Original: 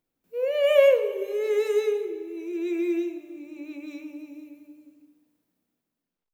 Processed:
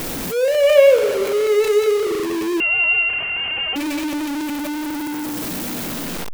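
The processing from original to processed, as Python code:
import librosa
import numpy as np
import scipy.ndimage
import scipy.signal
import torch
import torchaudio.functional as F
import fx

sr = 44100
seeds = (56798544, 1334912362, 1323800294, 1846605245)

y = x + 0.5 * 10.0 ** (-24.5 / 20.0) * np.sign(x)
y = fx.freq_invert(y, sr, carrier_hz=3100, at=(2.6, 3.76))
y = y * librosa.db_to_amplitude(5.0)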